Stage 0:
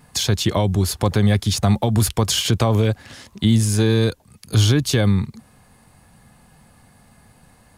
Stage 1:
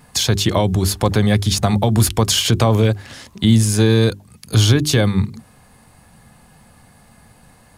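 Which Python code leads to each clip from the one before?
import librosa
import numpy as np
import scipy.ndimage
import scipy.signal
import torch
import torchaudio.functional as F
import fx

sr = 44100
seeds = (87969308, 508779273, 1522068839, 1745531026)

y = fx.hum_notches(x, sr, base_hz=50, count=8)
y = y * 10.0 ** (3.5 / 20.0)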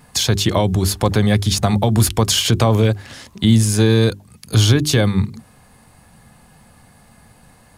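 y = x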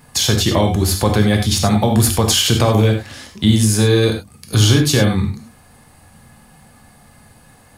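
y = fx.high_shelf(x, sr, hz=11000.0, db=3.0)
y = fx.rev_gated(y, sr, seeds[0], gate_ms=120, shape='flat', drr_db=3.0)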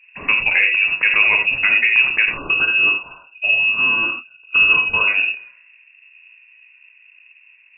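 y = fx.spec_erase(x, sr, start_s=2.37, length_s=2.71, low_hz=200.0, high_hz=1100.0)
y = fx.env_lowpass(y, sr, base_hz=420.0, full_db=-14.5)
y = fx.freq_invert(y, sr, carrier_hz=2700)
y = y * 10.0 ** (-1.0 / 20.0)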